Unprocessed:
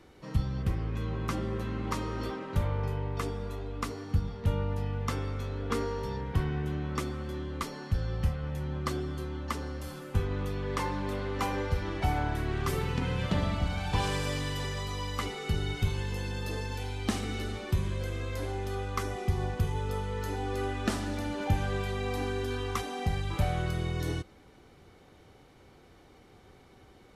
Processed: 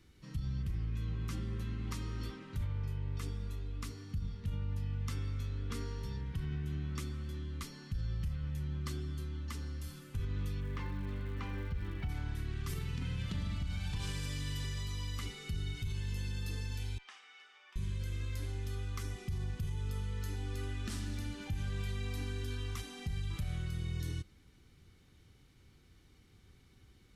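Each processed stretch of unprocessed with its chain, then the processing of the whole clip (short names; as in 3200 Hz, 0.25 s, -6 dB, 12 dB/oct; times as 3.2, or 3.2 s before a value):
10.6–12.08 LPF 2600 Hz + crackle 390/s -50 dBFS
16.98–17.76 HPF 790 Hz 24 dB/oct + tape spacing loss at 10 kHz 28 dB + notch 4100 Hz, Q 6.5
whole clip: passive tone stack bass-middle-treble 6-0-2; limiter -40 dBFS; gain +11 dB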